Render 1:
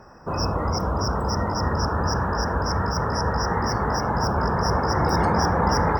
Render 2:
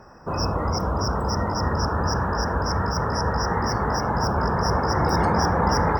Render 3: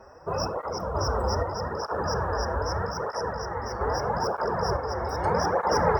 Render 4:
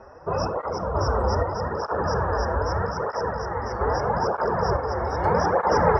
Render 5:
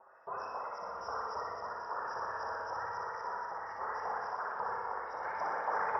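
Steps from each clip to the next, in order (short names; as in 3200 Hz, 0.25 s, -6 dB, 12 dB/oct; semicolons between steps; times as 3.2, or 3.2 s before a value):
nothing audible
graphic EQ 125/250/500 Hz -3/-7/+8 dB; random-step tremolo 2.1 Hz; tape flanging out of phase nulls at 0.8 Hz, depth 7.1 ms
air absorption 140 m; gain +4 dB
LFO band-pass saw up 3.7 Hz 870–3600 Hz; flutter echo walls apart 10.4 m, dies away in 1.2 s; reverb RT60 0.90 s, pre-delay 78 ms, DRR 5 dB; gain -8.5 dB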